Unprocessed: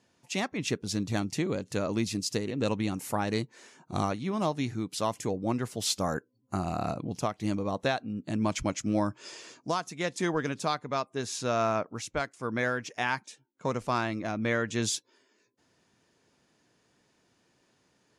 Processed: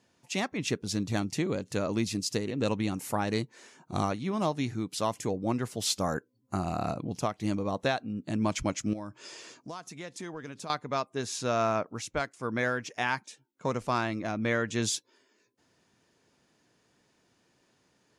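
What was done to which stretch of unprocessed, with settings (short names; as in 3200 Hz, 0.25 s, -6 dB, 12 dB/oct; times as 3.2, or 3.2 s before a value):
8.93–10.7 compressor 2.5:1, threshold -41 dBFS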